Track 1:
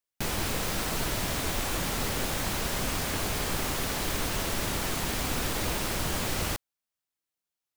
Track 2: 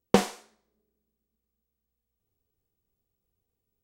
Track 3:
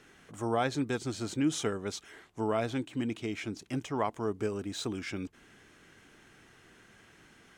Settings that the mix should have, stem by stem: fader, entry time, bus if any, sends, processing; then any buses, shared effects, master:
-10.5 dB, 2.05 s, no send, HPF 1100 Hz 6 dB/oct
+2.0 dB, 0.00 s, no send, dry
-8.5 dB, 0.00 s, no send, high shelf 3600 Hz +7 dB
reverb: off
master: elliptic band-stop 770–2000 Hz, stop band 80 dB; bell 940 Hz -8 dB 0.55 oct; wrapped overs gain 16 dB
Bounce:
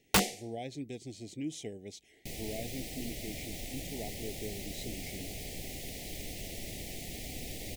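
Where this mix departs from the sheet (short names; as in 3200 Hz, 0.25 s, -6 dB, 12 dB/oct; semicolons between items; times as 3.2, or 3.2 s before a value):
stem 1: missing HPF 1100 Hz 6 dB/oct; stem 3: missing high shelf 3600 Hz +7 dB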